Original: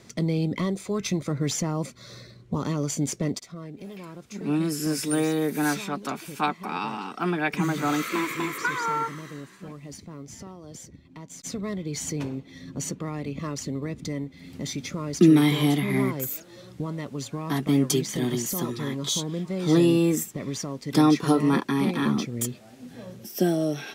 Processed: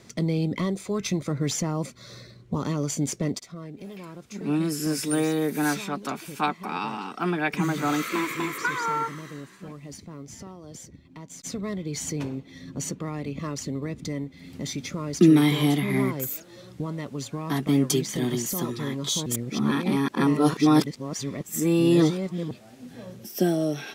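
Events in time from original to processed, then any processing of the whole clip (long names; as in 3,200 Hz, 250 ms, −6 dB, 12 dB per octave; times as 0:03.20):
0:19.26–0:22.51: reverse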